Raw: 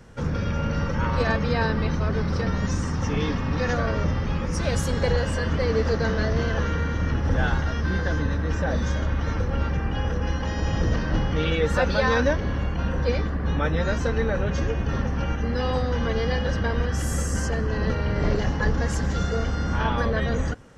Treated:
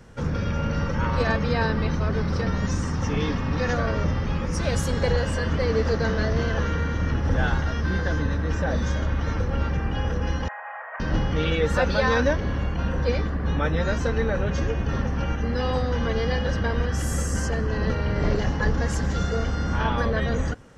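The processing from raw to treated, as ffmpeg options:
-filter_complex "[0:a]asettb=1/sr,asplit=3[a][b][c];[a]atrim=end=10.484[d];[b]atrim=start=10.48:end=11,asetpts=PTS-STARTPTS,afade=t=in:d=0.004:c=qsin,afade=t=out:st=0.516:d=0.004:c=qsin,asuperpass=centerf=1200:order=12:qfactor=0.74[e];[c]atrim=start=10.996[f];[d][e]acrossfade=d=0.004:c1=hsin:c2=qsin[g];[g][f]acrossfade=d=0.004:c1=qsin:c2=hsin"

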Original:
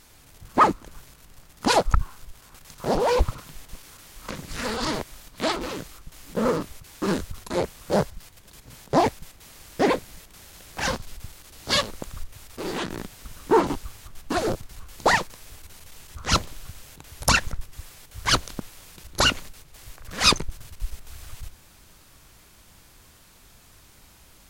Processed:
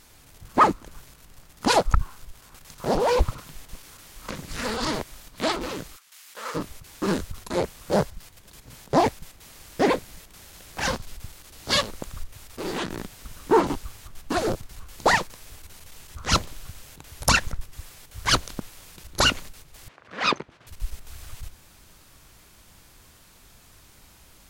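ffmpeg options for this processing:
-filter_complex "[0:a]asplit=3[a][b][c];[a]afade=t=out:st=5.95:d=0.02[d];[b]highpass=1.4k,afade=t=in:st=5.95:d=0.02,afade=t=out:st=6.54:d=0.02[e];[c]afade=t=in:st=6.54:d=0.02[f];[d][e][f]amix=inputs=3:normalize=0,asettb=1/sr,asplit=3[g][h][i];[g]atrim=end=19.884[j];[h]atrim=start=19.88:end=20.67,asetpts=PTS-STARTPTS,afade=t=in:d=0.004:c=qsin,afade=t=out:st=0.786:d=0.004:c=qsin,highpass=240,lowpass=2.6k[k];[i]atrim=start=20.666[l];[j][k]acrossfade=d=0.004:c1=hsin:c2=qsin[m];[m][l]acrossfade=d=0.004:c1=qsin:c2=hsin"

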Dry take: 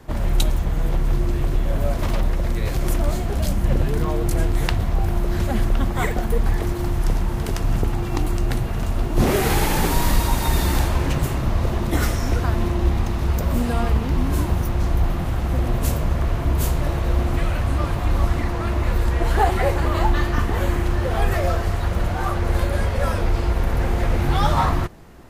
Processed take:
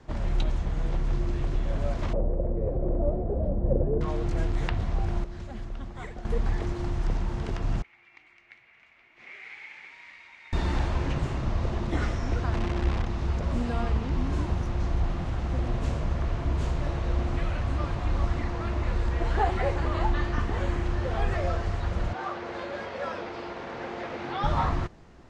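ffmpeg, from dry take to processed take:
-filter_complex "[0:a]asettb=1/sr,asplit=3[a][b][c];[a]atrim=end=2.134[d];[b]atrim=start=2.13:end=4.01,asetpts=PTS-STARTPTS,afade=t=in:d=0.004:c=qsin,afade=t=out:st=1.876:d=0.004:c=qsin,lowpass=f=530:t=q:w=3.5[e];[c]atrim=start=4.006[f];[d][e]acrossfade=d=0.004:c1=hsin:c2=qsin[g];[g][f]acrossfade=d=0.004:c1=qsin:c2=hsin,asettb=1/sr,asplit=3[h][i][j];[h]atrim=end=7.824[k];[i]atrim=start=7.82:end=10.53,asetpts=PTS-STARTPTS,afade=t=in:d=0.004:c=qsin,afade=t=out:st=2.706:d=0.004:c=qsin,bandpass=f=2.2k:t=q:w=9[l];[j]atrim=start=10.526[m];[k][l]acrossfade=d=0.004:c1=hsin:c2=qsin[n];[n][m]acrossfade=d=0.004:c1=qsin:c2=hsin,asettb=1/sr,asplit=3[o][p][q];[o]atrim=end=12.534[r];[p]atrim=start=12.53:end=13.07,asetpts=PTS-STARTPTS,afade=t=in:d=0.004:c=qsin,afade=t=out:st=0.536:d=0.004:c=qsin,acrusher=bits=5:dc=4:mix=0:aa=0.000001[s];[q]atrim=start=13.066[t];[r][s]acrossfade=d=0.004:c1=hsin:c2=qsin[u];[u][t]acrossfade=d=0.004:c1=qsin:c2=hsin,asettb=1/sr,asplit=3[v][w][x];[v]atrim=end=22.134[y];[w]atrim=start=22.13:end=24.44,asetpts=PTS-STARTPTS,afade=t=in:d=0.004:c=qsin,afade=t=out:st=2.306:d=0.004:c=qsin,highpass=290,lowpass=5k[z];[x]atrim=start=24.436[aa];[y][z]acrossfade=d=0.004:c1=hsin:c2=qsin[ab];[ab][aa]acrossfade=d=0.004:c1=qsin:c2=hsin,asplit=3[ac][ad][ae];[ac]atrim=end=5.242[af];[ad]atrim=start=5.238:end=6.252,asetpts=PTS-STARTPTS,volume=-10dB[ag];[ae]atrim=start=6.248[ah];[af][ag]acrossfade=d=0.004:c1=hsin:c2=hsin[ai];[ai][ah]acrossfade=d=0.004:c1=hsin:c2=hsin,lowpass=f=7k:w=0.5412,lowpass=f=7k:w=1.3066,acrossover=split=3600[aj][ak];[ak]acompressor=threshold=-44dB:ratio=4:attack=1:release=60[al];[aj][al]amix=inputs=2:normalize=0,volume=-7dB"

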